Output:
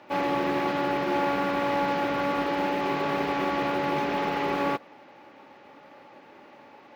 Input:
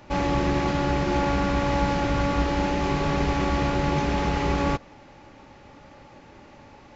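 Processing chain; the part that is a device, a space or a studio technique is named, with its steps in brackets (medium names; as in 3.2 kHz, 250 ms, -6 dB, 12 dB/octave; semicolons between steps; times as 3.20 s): early digital voice recorder (band-pass 290–3700 Hz; block-companded coder 7-bit)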